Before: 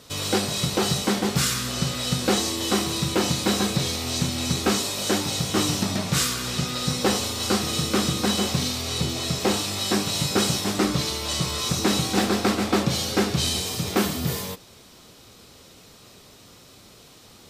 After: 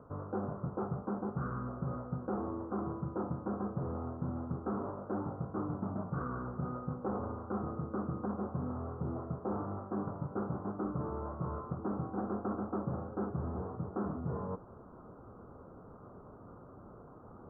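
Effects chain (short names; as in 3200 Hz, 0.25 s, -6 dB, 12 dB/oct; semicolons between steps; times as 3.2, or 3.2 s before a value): steep low-pass 1400 Hz 72 dB/oct; reverse; compressor 4:1, threshold -36 dBFS, peak gain reduction 16 dB; reverse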